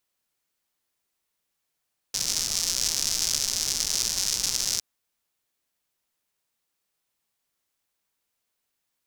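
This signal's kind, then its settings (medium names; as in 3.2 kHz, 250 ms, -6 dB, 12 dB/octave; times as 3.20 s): rain from filtered ticks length 2.66 s, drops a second 190, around 5.6 kHz, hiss -14.5 dB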